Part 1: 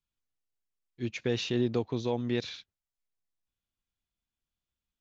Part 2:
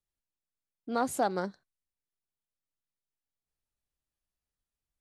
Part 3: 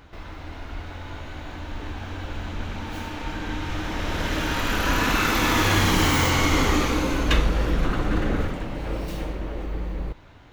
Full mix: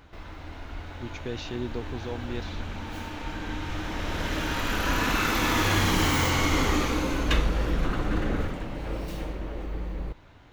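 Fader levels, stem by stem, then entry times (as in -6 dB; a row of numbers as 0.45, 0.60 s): -5.0 dB, off, -3.5 dB; 0.00 s, off, 0.00 s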